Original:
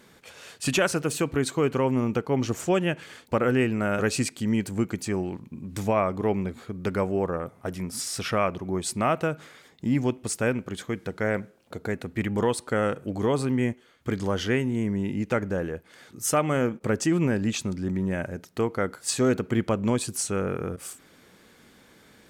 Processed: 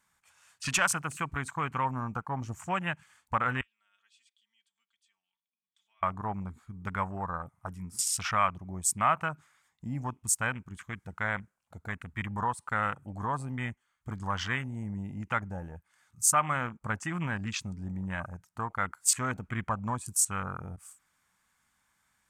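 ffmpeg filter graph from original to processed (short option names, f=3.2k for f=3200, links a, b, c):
-filter_complex "[0:a]asettb=1/sr,asplit=3[a][b][c];[a]atrim=end=3.614[d];[b]atrim=start=3.61:end=6.03,asetpts=PTS-STARTPTS,afade=t=in:d=0.004:c=qsin,afade=t=out:st=2.416:d=0.004:c=qsin,bandpass=f=3.4k:t=q:w=13,aecho=1:1:4.4:0.73,atrim=end_sample=106722[e];[c]atrim=start=6.026[f];[d][e]acrossfade=d=0.004:c1=hsin:c2=qsin[g];[g][f]acrossfade=d=0.004:c1=qsin:c2=hsin,equalizer=f=390:t=o:w=1.1:g=-13.5,afwtdn=0.0141,equalizer=f=125:t=o:w=1:g=-4,equalizer=f=250:t=o:w=1:g=-6,equalizer=f=500:t=o:w=1:g=-8,equalizer=f=1k:t=o:w=1:g=7,equalizer=f=4k:t=o:w=1:g=-6,equalizer=f=8k:t=o:w=1:g=7"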